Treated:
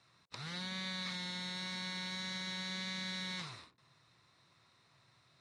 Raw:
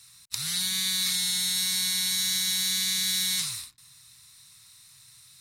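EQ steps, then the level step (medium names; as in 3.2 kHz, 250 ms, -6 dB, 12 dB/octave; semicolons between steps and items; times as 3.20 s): band-pass filter 480 Hz, Q 2.5; distance through air 90 m; +14.0 dB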